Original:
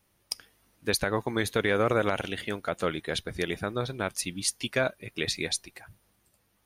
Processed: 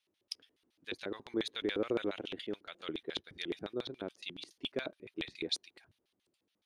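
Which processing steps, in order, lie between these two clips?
LFO band-pass square 7.1 Hz 340–3500 Hz; trim -1 dB

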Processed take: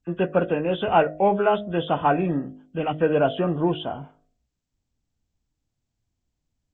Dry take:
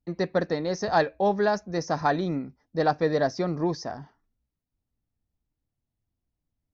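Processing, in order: knee-point frequency compression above 1.1 kHz 1.5:1; time-frequency box 2.78–3.01 s, 310–1800 Hz -8 dB; de-hum 51.64 Hz, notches 14; trim +4.5 dB

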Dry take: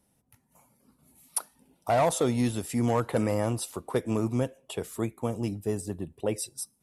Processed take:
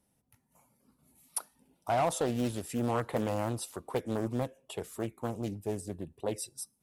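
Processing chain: loudspeaker Doppler distortion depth 0.51 ms; trim -4.5 dB

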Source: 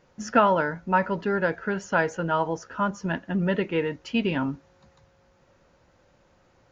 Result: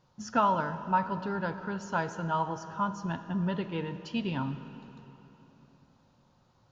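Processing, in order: graphic EQ 125/500/1000/2000/4000 Hz +9/-5/+8/-8/+8 dB; algorithmic reverb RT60 3.6 s, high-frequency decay 0.7×, pre-delay 5 ms, DRR 10.5 dB; trim -8.5 dB

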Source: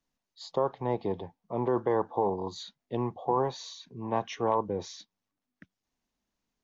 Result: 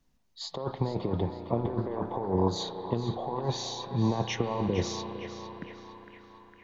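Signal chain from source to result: bass shelf 230 Hz +11.5 dB; compressor with a negative ratio -29 dBFS, ratio -0.5; band-passed feedback delay 457 ms, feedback 71%, band-pass 1.5 kHz, level -6 dB; on a send at -9 dB: reverberation RT60 4.4 s, pre-delay 34 ms; on the sum: trim +1.5 dB

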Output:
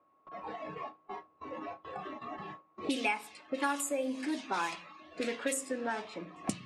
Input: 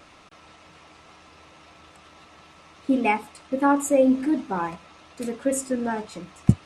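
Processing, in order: whistle 1.1 kHz -45 dBFS; high-pass 130 Hz 6 dB/octave; tilt EQ +3.5 dB/octave; hum notches 60/120/180 Hz; gate with hold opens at -35 dBFS; reverberation RT60 0.40 s, pre-delay 3 ms, DRR 14.5 dB; spectral noise reduction 16 dB; treble shelf 6.2 kHz -7 dB; level-controlled noise filter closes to 580 Hz, open at -22.5 dBFS; three bands compressed up and down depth 100%; trim -6.5 dB

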